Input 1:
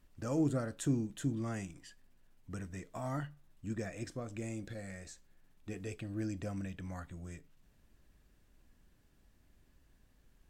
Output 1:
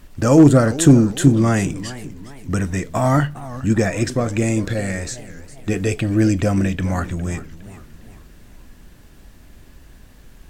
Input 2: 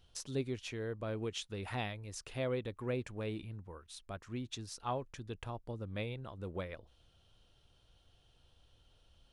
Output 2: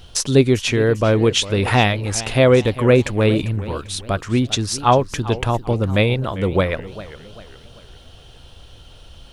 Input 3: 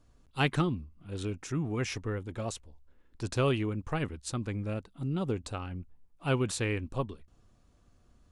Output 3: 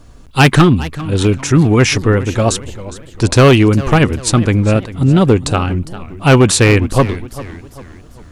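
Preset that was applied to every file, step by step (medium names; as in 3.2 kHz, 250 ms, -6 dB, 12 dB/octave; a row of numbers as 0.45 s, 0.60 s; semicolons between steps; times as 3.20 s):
overload inside the chain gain 25 dB; modulated delay 403 ms, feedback 42%, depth 216 cents, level -16 dB; peak normalisation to -1.5 dBFS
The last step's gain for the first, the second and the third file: +22.0 dB, +23.0 dB, +22.0 dB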